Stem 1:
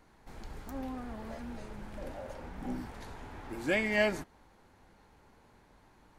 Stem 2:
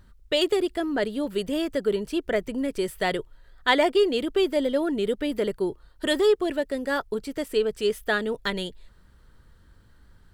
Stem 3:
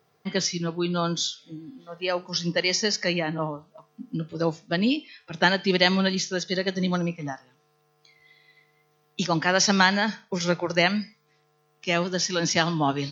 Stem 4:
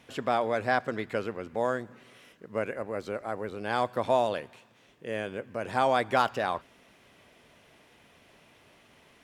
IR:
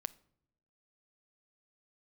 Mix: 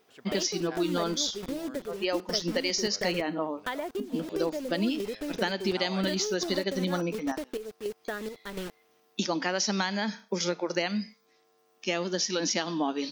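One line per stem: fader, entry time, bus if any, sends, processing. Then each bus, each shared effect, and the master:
muted
−1.5 dB, 0.00 s, bus B, no send, adaptive Wiener filter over 15 samples; high-shelf EQ 3,400 Hz −9.5 dB; bit-depth reduction 6 bits, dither none
+3.0 dB, 0.00 s, bus A, no send, parametric band 1,500 Hz −5.5 dB 2.5 octaves
−13.5 dB, 0.00 s, bus B, no send, low-shelf EQ 400 Hz −9.5 dB
bus A: 0.0 dB, linear-phase brick-wall high-pass 180 Hz; downward compressor, threshold −25 dBFS, peak gain reduction 11 dB
bus B: 0.0 dB, square-wave tremolo 1.4 Hz, depth 65%, duty 60%; downward compressor 8 to 1, threshold −31 dBFS, peak gain reduction 13 dB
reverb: not used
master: no processing

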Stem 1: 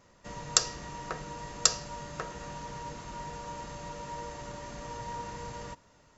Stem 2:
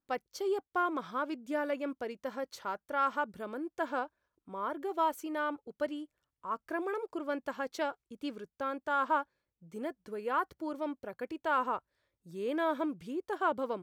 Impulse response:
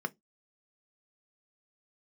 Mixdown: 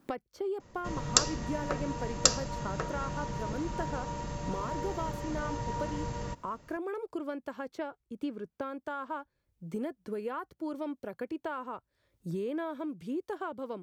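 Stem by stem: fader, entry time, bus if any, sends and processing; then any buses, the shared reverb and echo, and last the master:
0.0 dB, 0.60 s, no send, no processing
−7.0 dB, 0.00 s, no send, multiband upward and downward compressor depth 100%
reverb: not used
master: low-shelf EQ 400 Hz +8.5 dB

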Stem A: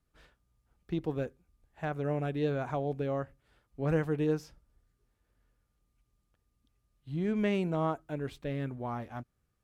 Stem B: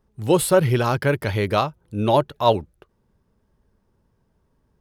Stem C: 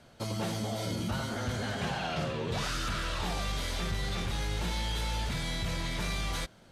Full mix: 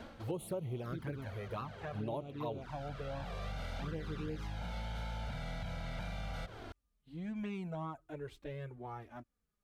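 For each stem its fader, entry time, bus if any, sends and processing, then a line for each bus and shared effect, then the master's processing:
−4.5 dB, 0.00 s, no send, no processing
−8.5 dB, 0.00 s, no send, parametric band 5,200 Hz −11 dB 1.7 octaves; shaped tremolo triangle 0.58 Hz, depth 65%
+1.0 dB, 0.00 s, no send, compressor on every frequency bin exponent 0.6; parametric band 9,000 Hz −13.5 dB 2.1 octaves; downward compressor 16 to 1, threshold −33 dBFS, peak gain reduction 8 dB; automatic ducking −10 dB, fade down 0.20 s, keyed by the second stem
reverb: not used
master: flanger swept by the level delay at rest 5.1 ms, full sweep at −25.5 dBFS; downward compressor 5 to 1, threshold −37 dBFS, peak gain reduction 13.5 dB

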